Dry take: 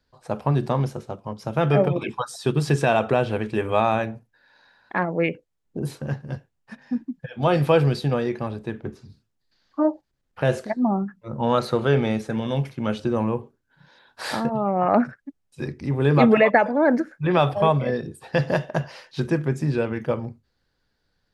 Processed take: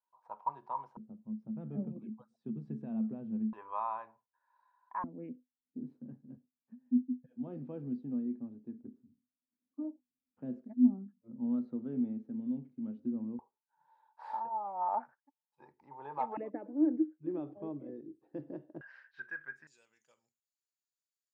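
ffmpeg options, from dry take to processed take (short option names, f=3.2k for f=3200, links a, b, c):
-af "asetnsamples=n=441:p=0,asendcmd='0.97 bandpass f 220;3.53 bandpass f 1000;5.04 bandpass f 250;13.39 bandpass f 890;16.37 bandpass f 310;18.81 bandpass f 1600;19.67 bandpass f 7000',bandpass=f=960:t=q:w=17:csg=0"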